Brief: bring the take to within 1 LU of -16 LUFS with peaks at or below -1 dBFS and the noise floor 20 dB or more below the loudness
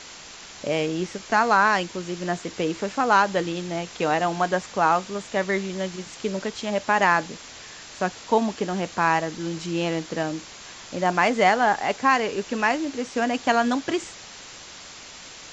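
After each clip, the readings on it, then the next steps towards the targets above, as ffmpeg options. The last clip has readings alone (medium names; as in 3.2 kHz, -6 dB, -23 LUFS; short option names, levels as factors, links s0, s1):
noise floor -43 dBFS; noise floor target -44 dBFS; loudness -24.0 LUFS; peak level -5.0 dBFS; loudness target -16.0 LUFS
-> -af "afftdn=nr=6:nf=-43"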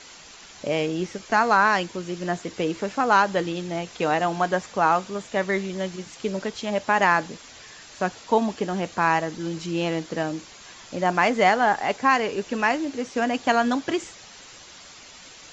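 noise floor -46 dBFS; loudness -24.0 LUFS; peak level -5.0 dBFS; loudness target -16.0 LUFS
-> -af "volume=2.51,alimiter=limit=0.891:level=0:latency=1"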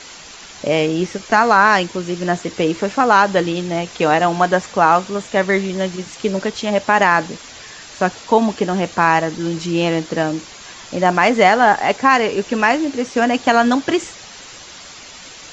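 loudness -16.5 LUFS; peak level -1.0 dBFS; noise floor -38 dBFS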